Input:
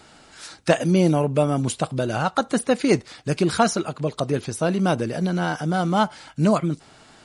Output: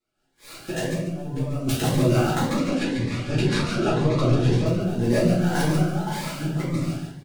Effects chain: dead-time distortion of 0.081 ms; gate -46 dBFS, range -38 dB; transient shaper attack -11 dB, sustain +6 dB; compressor with a negative ratio -27 dBFS, ratio -0.5; 2.43–4.66 s: distance through air 95 m; feedback delay 142 ms, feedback 27%, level -5.5 dB; reverberation RT60 0.65 s, pre-delay 4 ms, DRR -9.5 dB; Shepard-style phaser rising 1.9 Hz; trim -5.5 dB

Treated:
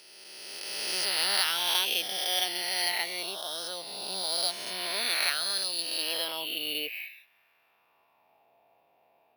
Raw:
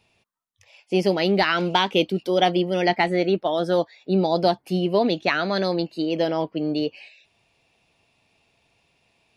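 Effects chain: reverse spectral sustain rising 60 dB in 2.29 s; band-pass sweep 5.6 kHz -> 740 Hz, 5.67–8.51 s; careless resampling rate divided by 3×, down filtered, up hold; trim +4.5 dB

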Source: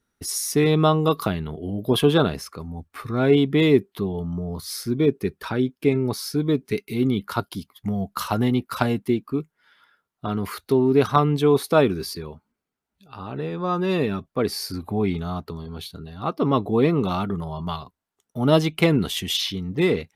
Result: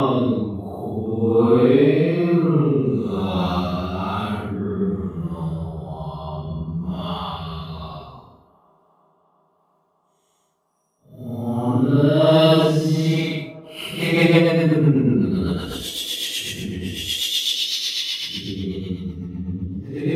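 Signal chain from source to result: Paulstretch 6.2×, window 0.10 s, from 16.54 s; rotary cabinet horn 1.1 Hz, later 8 Hz, at 13.44 s; feedback echo behind a band-pass 352 ms, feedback 77%, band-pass 620 Hz, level -23 dB; trim +3.5 dB

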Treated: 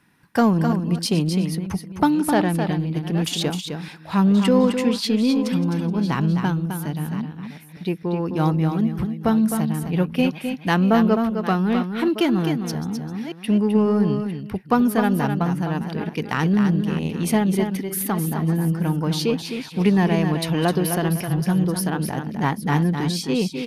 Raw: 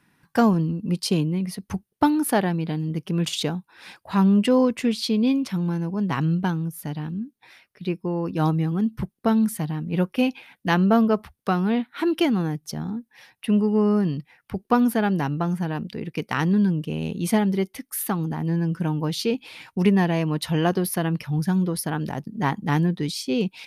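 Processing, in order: chunks repeated in reverse 555 ms, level -14 dB; in parallel at -10.5 dB: hard clipper -23.5 dBFS, distortion -7 dB; 2.15–2.59 s: on the sum: low-pass 9.4 kHz 12 dB/octave; delay 259 ms -7 dB

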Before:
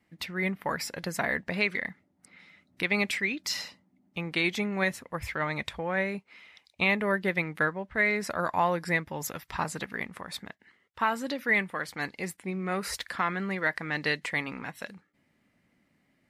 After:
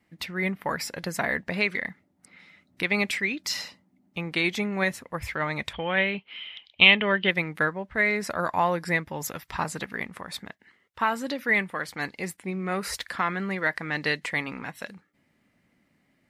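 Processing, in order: 5.73–7.31 s: resonant low-pass 3.1 kHz, resonance Q 16; trim +2 dB

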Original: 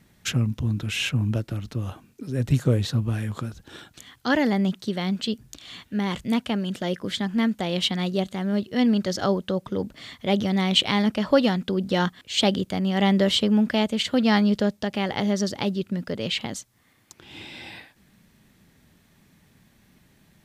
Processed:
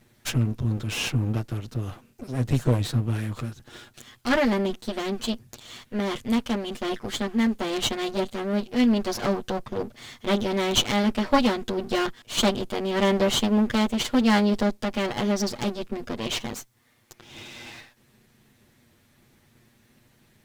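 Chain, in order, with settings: comb filter that takes the minimum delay 8.4 ms

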